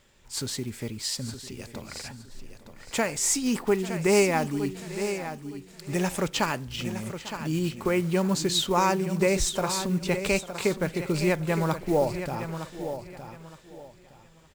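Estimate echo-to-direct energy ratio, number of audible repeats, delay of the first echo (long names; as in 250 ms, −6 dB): −9.0 dB, 5, 847 ms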